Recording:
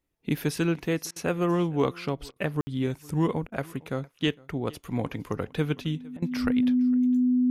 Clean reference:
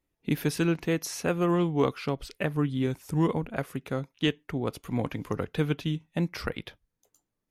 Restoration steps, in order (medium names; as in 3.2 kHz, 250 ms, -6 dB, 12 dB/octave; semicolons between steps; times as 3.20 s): band-stop 250 Hz, Q 30; room tone fill 2.61–2.67 s; interpolate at 1.11/2.31/3.47/6.17 s, 50 ms; inverse comb 458 ms -24 dB